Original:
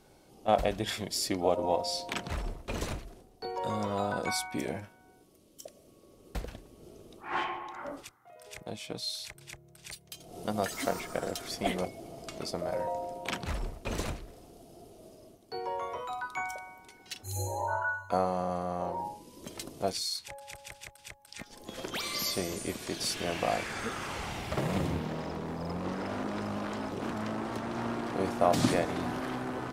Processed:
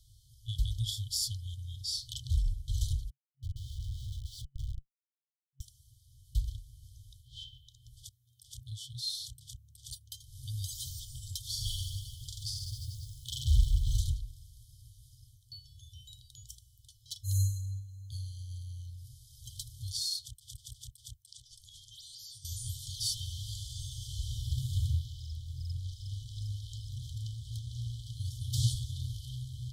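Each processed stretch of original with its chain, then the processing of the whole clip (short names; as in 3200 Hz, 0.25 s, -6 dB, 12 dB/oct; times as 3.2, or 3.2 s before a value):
3.1–5.61 HPF 740 Hz + Schmitt trigger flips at -35.5 dBFS + high shelf 6600 Hz -11.5 dB
11.4–13.97 modulation noise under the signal 31 dB + reverse bouncing-ball echo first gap 40 ms, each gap 1.15×, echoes 8, each echo -2 dB
21.22–22.45 Chebyshev low-pass 9700 Hz + low shelf 250 Hz -7.5 dB + compressor 12:1, threshold -44 dBFS
whole clip: bell 71 Hz +9 dB 2.9 oct; FFT band-reject 130–3000 Hz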